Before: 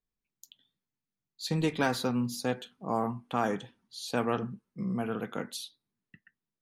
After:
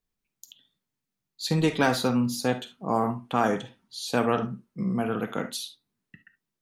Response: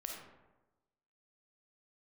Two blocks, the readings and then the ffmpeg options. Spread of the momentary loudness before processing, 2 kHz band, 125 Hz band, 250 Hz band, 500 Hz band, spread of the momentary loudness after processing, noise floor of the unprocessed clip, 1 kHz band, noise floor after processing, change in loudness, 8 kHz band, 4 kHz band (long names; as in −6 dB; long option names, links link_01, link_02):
12 LU, +5.5 dB, +5.0 dB, +5.5 dB, +5.5 dB, 12 LU, below −85 dBFS, +5.5 dB, −85 dBFS, +5.5 dB, +5.5 dB, +5.5 dB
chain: -filter_complex "[0:a]asplit=2[link_01][link_02];[1:a]atrim=start_sample=2205,atrim=end_sample=3528[link_03];[link_02][link_03]afir=irnorm=-1:irlink=0,volume=2.5dB[link_04];[link_01][link_04]amix=inputs=2:normalize=0"